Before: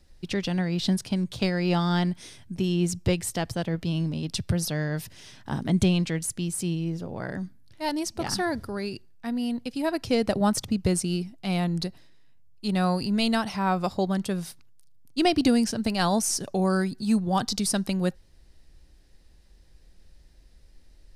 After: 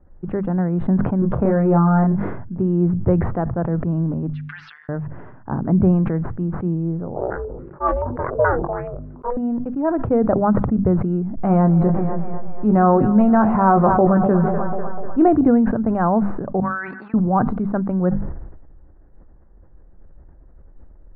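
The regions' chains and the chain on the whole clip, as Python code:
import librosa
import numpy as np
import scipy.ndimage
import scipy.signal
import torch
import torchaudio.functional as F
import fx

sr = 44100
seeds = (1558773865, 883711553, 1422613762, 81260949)

y = fx.chain(x, sr, fx.air_absorb(metres=210.0),
    fx.doubler(ms=30.0, db=-2.5),
    fx.env_flatten(amount_pct=50), at=(1.19, 2.17))
y = fx.chain(y, sr, fx.cheby2_highpass(hz=630.0, order=4, stop_db=70),
    fx.comb(ms=6.9, depth=0.84), at=(4.33, 4.89))
y = fx.chain(y, sr, fx.ring_mod(carrier_hz=250.0),
    fx.doubler(ms=21.0, db=-11),
    fx.filter_held_lowpass(hz=7.0, low_hz=610.0, high_hz=3300.0), at=(7.16, 9.37))
y = fx.chain(y, sr, fx.doubler(ms=19.0, db=-8),
    fx.echo_split(split_hz=440.0, low_ms=145, high_ms=247, feedback_pct=52, wet_db=-14.5),
    fx.env_flatten(amount_pct=70), at=(11.37, 15.28))
y = fx.chain(y, sr, fx.level_steps(step_db=11),
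    fx.highpass_res(hz=1800.0, q=1.8), at=(16.6, 17.14))
y = scipy.signal.sosfilt(scipy.signal.butter(6, 1400.0, 'lowpass', fs=sr, output='sos'), y)
y = fx.hum_notches(y, sr, base_hz=50, count=5)
y = fx.sustainer(y, sr, db_per_s=45.0)
y = y * librosa.db_to_amplitude(6.5)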